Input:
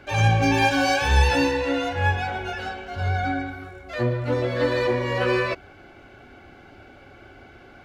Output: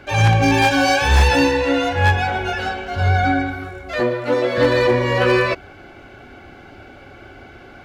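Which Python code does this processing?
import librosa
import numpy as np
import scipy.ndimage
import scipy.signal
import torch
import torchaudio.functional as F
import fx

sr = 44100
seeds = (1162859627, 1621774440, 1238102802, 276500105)

p1 = fx.highpass(x, sr, hz=280.0, slope=12, at=(4.0, 4.58))
p2 = fx.rider(p1, sr, range_db=4, speed_s=2.0)
p3 = p1 + (p2 * 10.0 ** (0.5 / 20.0))
y = 10.0 ** (-6.5 / 20.0) * (np.abs((p3 / 10.0 ** (-6.5 / 20.0) + 3.0) % 4.0 - 2.0) - 1.0)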